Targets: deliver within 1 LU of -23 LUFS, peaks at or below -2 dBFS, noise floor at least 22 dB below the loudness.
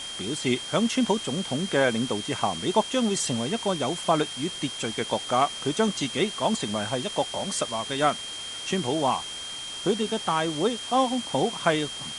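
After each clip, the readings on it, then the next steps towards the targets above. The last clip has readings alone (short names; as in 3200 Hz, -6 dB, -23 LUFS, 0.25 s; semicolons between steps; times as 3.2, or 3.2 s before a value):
steady tone 3200 Hz; tone level -35 dBFS; noise floor -36 dBFS; noise floor target -49 dBFS; loudness -26.5 LUFS; peak -6.5 dBFS; loudness target -23.0 LUFS
-> notch 3200 Hz, Q 30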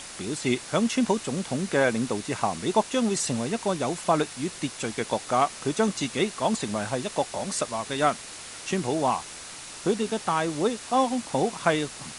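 steady tone none; noise floor -41 dBFS; noise floor target -49 dBFS
-> denoiser 8 dB, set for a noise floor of -41 dBFS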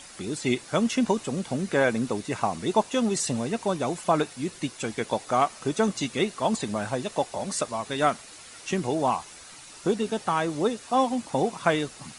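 noise floor -46 dBFS; noise floor target -49 dBFS
-> denoiser 6 dB, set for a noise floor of -46 dBFS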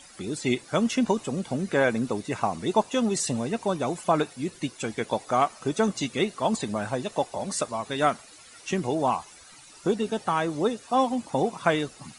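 noise floor -50 dBFS; loudness -27.0 LUFS; peak -7.0 dBFS; loudness target -23.0 LUFS
-> gain +4 dB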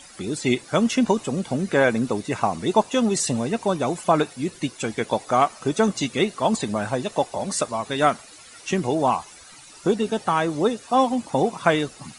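loudness -23.0 LUFS; peak -3.0 dBFS; noise floor -46 dBFS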